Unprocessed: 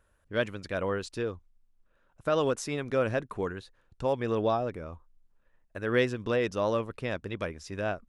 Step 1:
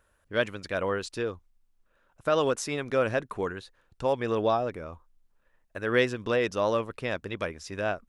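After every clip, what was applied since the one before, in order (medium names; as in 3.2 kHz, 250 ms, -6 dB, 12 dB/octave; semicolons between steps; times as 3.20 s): bass shelf 340 Hz -5.5 dB; trim +3.5 dB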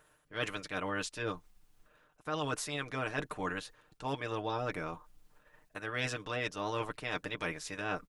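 spectral peaks clipped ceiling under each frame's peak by 14 dB; comb 6.6 ms, depth 62%; reverse; compression 6:1, threshold -33 dBFS, peak gain reduction 15.5 dB; reverse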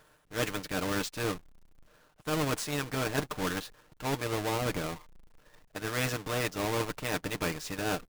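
square wave that keeps the level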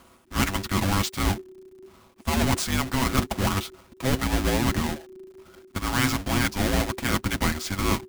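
frequency shift -390 Hz; trim +8 dB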